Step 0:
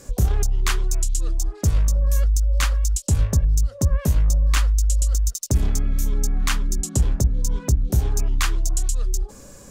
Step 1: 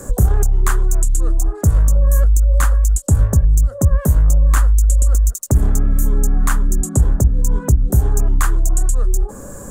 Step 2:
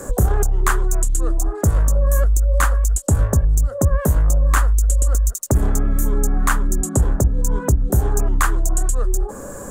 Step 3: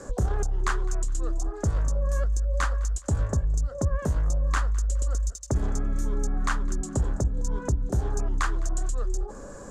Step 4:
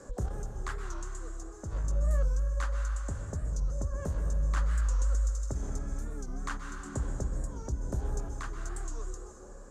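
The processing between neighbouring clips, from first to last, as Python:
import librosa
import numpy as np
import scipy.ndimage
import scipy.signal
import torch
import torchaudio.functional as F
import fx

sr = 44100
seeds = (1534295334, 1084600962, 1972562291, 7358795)

y1 = fx.band_shelf(x, sr, hz=3500.0, db=-15.5, octaves=1.7)
y1 = fx.band_squash(y1, sr, depth_pct=40)
y1 = F.gain(torch.from_numpy(y1), 6.0).numpy()
y2 = fx.bass_treble(y1, sr, bass_db=-7, treble_db=-4)
y2 = F.gain(torch.from_numpy(y2), 3.5).numpy()
y3 = fx.lowpass_res(y2, sr, hz=5100.0, q=1.8)
y3 = fx.echo_feedback(y3, sr, ms=208, feedback_pct=38, wet_db=-21.5)
y3 = F.gain(torch.from_numpy(y3), -9.0).numpy()
y4 = fx.tremolo_random(y3, sr, seeds[0], hz=3.5, depth_pct=55)
y4 = fx.rev_plate(y4, sr, seeds[1], rt60_s=2.3, hf_ratio=0.75, predelay_ms=115, drr_db=4.0)
y4 = fx.record_warp(y4, sr, rpm=45.0, depth_cents=160.0)
y4 = F.gain(torch.from_numpy(y4), -7.5).numpy()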